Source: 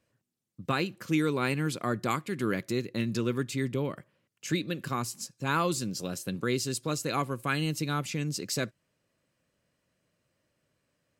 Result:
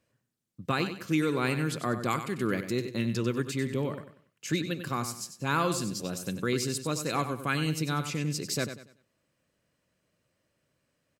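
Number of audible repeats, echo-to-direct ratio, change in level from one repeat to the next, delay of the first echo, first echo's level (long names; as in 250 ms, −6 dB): 3, −9.5 dB, −10.0 dB, 95 ms, −10.0 dB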